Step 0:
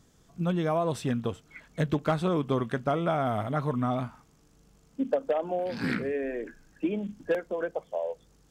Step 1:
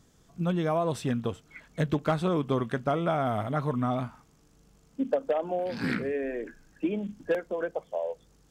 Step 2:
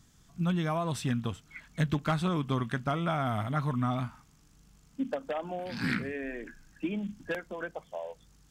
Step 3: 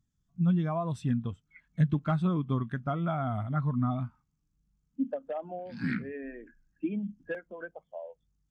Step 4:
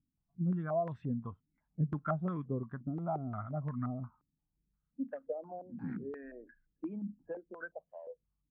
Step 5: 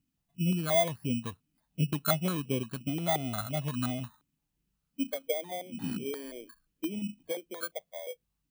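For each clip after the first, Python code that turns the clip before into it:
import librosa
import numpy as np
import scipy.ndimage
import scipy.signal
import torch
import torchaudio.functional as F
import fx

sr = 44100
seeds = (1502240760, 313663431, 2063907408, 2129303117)

y1 = x
y2 = fx.peak_eq(y1, sr, hz=480.0, db=-11.5, octaves=1.4)
y2 = y2 * 10.0 ** (2.0 / 20.0)
y3 = fx.spectral_expand(y2, sr, expansion=1.5)
y4 = fx.filter_held_lowpass(y3, sr, hz=5.7, low_hz=290.0, high_hz=1800.0)
y4 = y4 * 10.0 ** (-9.0 / 20.0)
y5 = fx.bit_reversed(y4, sr, seeds[0], block=16)
y5 = fx.low_shelf(y5, sr, hz=160.0, db=-8.0)
y5 = y5 * 10.0 ** (7.5 / 20.0)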